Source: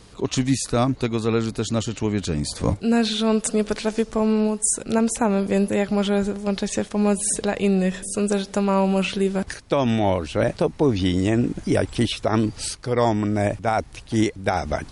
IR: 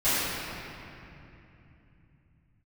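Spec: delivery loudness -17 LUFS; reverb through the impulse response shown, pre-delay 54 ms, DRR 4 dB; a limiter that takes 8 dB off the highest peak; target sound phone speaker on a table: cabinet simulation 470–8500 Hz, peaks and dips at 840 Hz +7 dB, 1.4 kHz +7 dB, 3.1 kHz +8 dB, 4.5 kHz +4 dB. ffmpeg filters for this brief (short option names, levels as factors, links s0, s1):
-filter_complex "[0:a]alimiter=limit=0.168:level=0:latency=1,asplit=2[s0][s1];[1:a]atrim=start_sample=2205,adelay=54[s2];[s1][s2]afir=irnorm=-1:irlink=0,volume=0.1[s3];[s0][s3]amix=inputs=2:normalize=0,highpass=f=470:w=0.5412,highpass=f=470:w=1.3066,equalizer=f=840:t=q:w=4:g=7,equalizer=f=1400:t=q:w=4:g=7,equalizer=f=3100:t=q:w=4:g=8,equalizer=f=4500:t=q:w=4:g=4,lowpass=f=8500:w=0.5412,lowpass=f=8500:w=1.3066,volume=2.99"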